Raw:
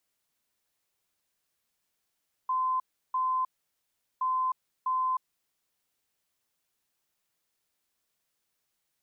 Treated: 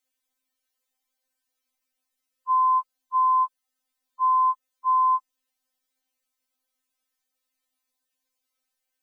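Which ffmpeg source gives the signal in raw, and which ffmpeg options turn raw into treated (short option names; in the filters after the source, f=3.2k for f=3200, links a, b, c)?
-f lavfi -i "aevalsrc='0.0562*sin(2*PI*1030*t)*clip(min(mod(mod(t,1.72),0.65),0.31-mod(mod(t,1.72),0.65))/0.005,0,1)*lt(mod(t,1.72),1.3)':d=3.44:s=44100"
-af "afftfilt=real='re*3.46*eq(mod(b,12),0)':imag='im*3.46*eq(mod(b,12),0)':win_size=2048:overlap=0.75"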